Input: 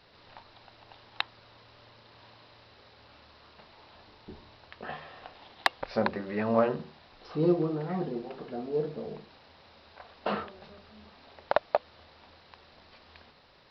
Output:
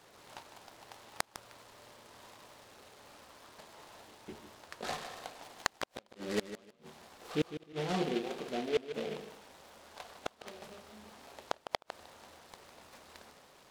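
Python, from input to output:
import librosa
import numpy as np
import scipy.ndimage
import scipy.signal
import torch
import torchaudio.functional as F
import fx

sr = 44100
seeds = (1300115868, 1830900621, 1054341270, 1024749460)

y = fx.highpass(x, sr, hz=260.0, slope=6)
y = fx.peak_eq(y, sr, hz=6400.0, db=-11.5, octaves=1.2)
y = fx.gate_flip(y, sr, shuts_db=-22.0, range_db=-41)
y = fx.echo_feedback(y, sr, ms=154, feedback_pct=20, wet_db=-11.5)
y = fx.noise_mod_delay(y, sr, seeds[0], noise_hz=2400.0, depth_ms=0.093)
y = y * librosa.db_to_amplitude(2.0)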